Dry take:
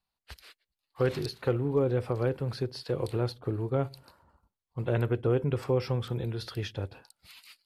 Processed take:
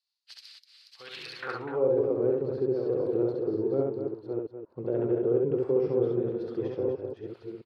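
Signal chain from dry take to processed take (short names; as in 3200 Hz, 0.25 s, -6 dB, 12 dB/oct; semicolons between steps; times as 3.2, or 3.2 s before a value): reverse delay 0.629 s, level -6.5 dB; limiter -20 dBFS, peak gain reduction 5.5 dB; band-pass sweep 4800 Hz -> 390 Hz, 0.98–1.97; on a send: loudspeakers at several distances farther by 23 m -2 dB, 85 m -8 dB; on the sum: gain +6.5 dB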